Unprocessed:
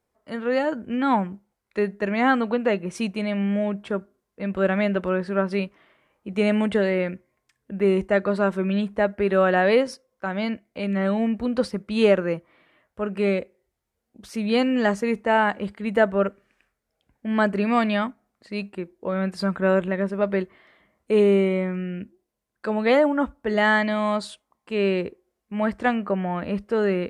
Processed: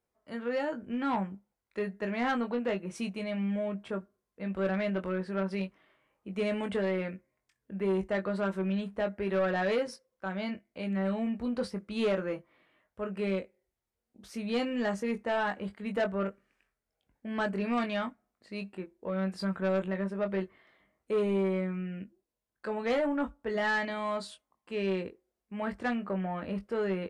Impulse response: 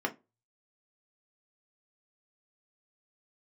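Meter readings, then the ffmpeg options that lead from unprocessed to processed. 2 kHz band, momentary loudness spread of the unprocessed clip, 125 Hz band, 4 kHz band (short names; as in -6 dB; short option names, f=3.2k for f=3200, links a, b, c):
-9.5 dB, 13 LU, -7.5 dB, -8.5 dB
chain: -filter_complex "[0:a]asplit=2[a][b];[b]adelay=21,volume=-6.5dB[c];[a][c]amix=inputs=2:normalize=0,asoftclip=type=tanh:threshold=-14dB,volume=-8.5dB"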